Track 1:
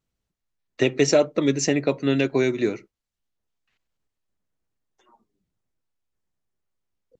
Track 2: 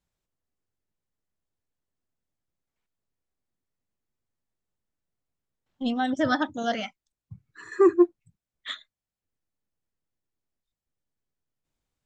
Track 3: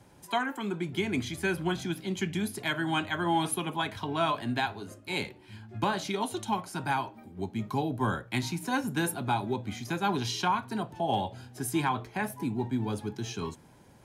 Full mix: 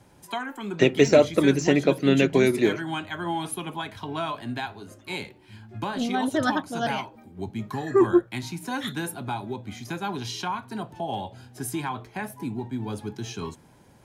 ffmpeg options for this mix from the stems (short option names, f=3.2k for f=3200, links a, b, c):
-filter_complex "[0:a]deesser=0.65,volume=1.5dB[a];[1:a]adelay=150,volume=-0.5dB[b];[2:a]alimiter=limit=-22dB:level=0:latency=1:release=490,volume=1.5dB[c];[a][b][c]amix=inputs=3:normalize=0"